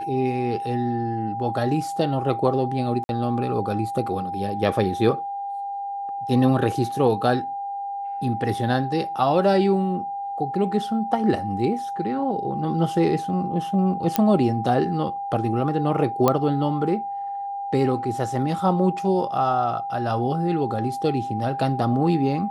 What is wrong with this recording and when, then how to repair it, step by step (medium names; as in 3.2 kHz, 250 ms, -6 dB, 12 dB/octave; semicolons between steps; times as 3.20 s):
whine 800 Hz -27 dBFS
3.04–3.09 s: dropout 51 ms
14.16 s: pop -4 dBFS
16.28 s: pop -5 dBFS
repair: de-click; band-stop 800 Hz, Q 30; interpolate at 3.04 s, 51 ms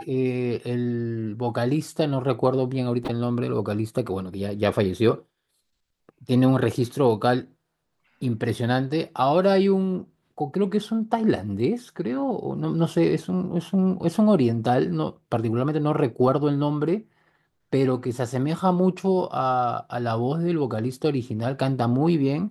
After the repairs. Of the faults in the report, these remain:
nothing left